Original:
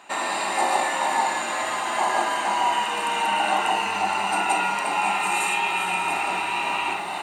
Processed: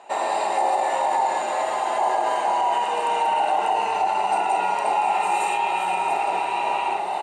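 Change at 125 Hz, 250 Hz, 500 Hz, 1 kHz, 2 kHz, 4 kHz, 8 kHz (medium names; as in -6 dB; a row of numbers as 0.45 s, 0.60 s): no reading, -3.5 dB, +4.5 dB, +2.5 dB, -6.0 dB, -6.0 dB, -6.0 dB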